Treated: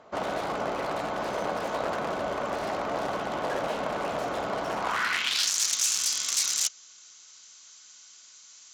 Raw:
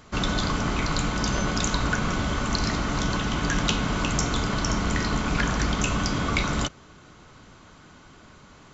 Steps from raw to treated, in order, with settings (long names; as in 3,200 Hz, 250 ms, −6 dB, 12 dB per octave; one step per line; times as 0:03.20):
high-shelf EQ 2,200 Hz +9 dB
wrap-around overflow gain 16.5 dB
band-pass filter sweep 630 Hz → 6,300 Hz, 0:04.75–0:05.52
level +6 dB